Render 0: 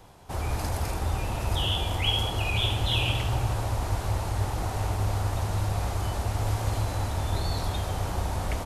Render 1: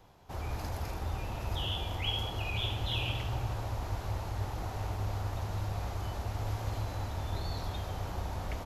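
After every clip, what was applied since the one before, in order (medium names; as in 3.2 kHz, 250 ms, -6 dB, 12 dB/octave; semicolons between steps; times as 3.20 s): peaking EQ 9 kHz -13 dB 0.39 oct; trim -7.5 dB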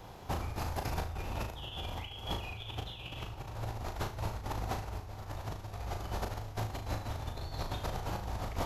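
compressor with a negative ratio -40 dBFS, ratio -0.5; flutter echo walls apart 6.3 m, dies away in 0.36 s; trim +2.5 dB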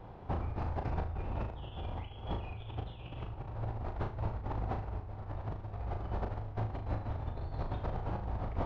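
tape spacing loss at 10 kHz 44 dB; trim +2 dB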